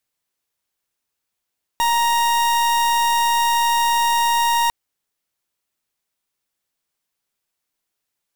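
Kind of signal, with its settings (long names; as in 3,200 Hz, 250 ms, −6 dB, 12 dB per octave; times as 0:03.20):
pulse wave 937 Hz, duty 41% −17.5 dBFS 2.90 s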